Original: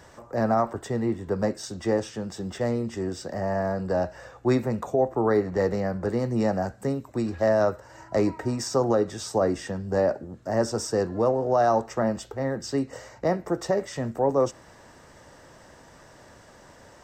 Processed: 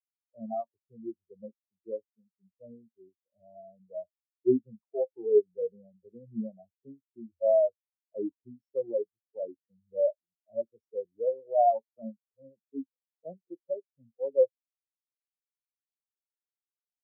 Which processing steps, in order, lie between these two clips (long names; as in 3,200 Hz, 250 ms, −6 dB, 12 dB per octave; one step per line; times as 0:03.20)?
every bin expanded away from the loudest bin 4 to 1